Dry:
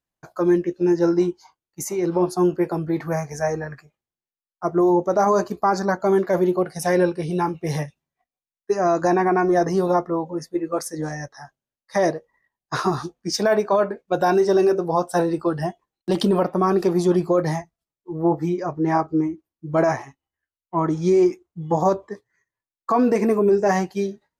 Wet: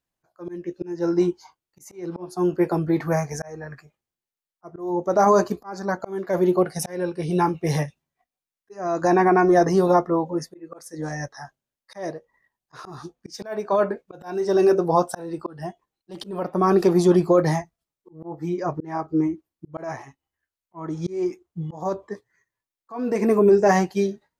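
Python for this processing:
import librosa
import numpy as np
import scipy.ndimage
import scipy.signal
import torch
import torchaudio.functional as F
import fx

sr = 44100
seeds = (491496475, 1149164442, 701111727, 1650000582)

y = fx.auto_swell(x, sr, attack_ms=508.0)
y = y * librosa.db_to_amplitude(2.0)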